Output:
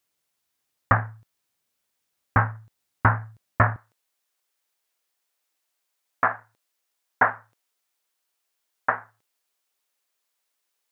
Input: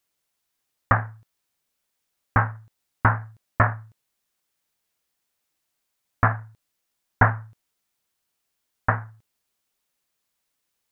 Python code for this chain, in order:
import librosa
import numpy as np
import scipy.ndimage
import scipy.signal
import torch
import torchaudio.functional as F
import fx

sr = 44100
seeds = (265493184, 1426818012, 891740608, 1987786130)

y = fx.highpass(x, sr, hz=fx.steps((0.0, 50.0), (3.76, 390.0)), slope=12)